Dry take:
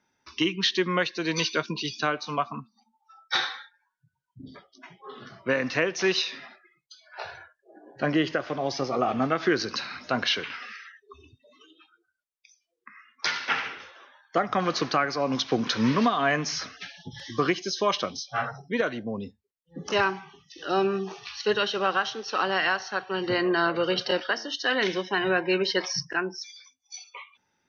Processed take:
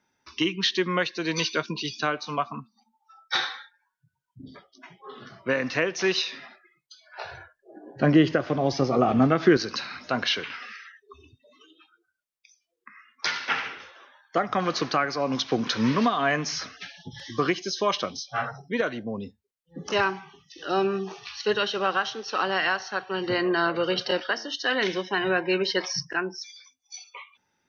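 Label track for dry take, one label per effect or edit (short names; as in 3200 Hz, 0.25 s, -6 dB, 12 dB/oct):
7.310000	9.570000	low shelf 400 Hz +10.5 dB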